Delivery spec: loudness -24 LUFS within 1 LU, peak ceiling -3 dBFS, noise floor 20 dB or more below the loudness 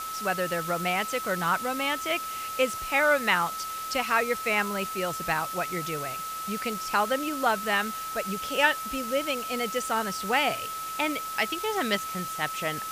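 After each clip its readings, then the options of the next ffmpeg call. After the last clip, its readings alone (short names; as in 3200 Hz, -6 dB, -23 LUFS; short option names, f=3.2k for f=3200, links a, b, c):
steady tone 1300 Hz; tone level -33 dBFS; noise floor -35 dBFS; noise floor target -48 dBFS; loudness -27.5 LUFS; peak -7.5 dBFS; loudness target -24.0 LUFS
-> -af "bandreject=f=1.3k:w=30"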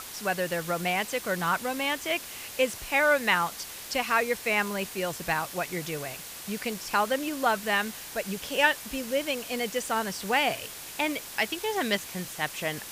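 steady tone none; noise floor -42 dBFS; noise floor target -49 dBFS
-> -af "afftdn=nr=7:nf=-42"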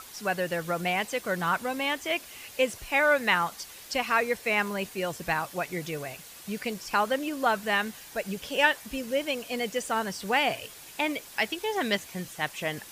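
noise floor -47 dBFS; noise floor target -49 dBFS
-> -af "afftdn=nr=6:nf=-47"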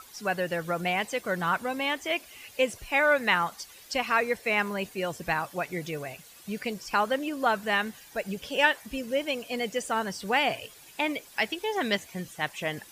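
noise floor -51 dBFS; loudness -28.5 LUFS; peak -8.0 dBFS; loudness target -24.0 LUFS
-> -af "volume=4.5dB"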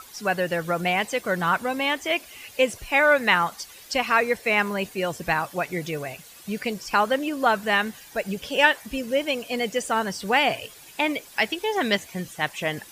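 loudness -24.0 LUFS; peak -3.5 dBFS; noise floor -47 dBFS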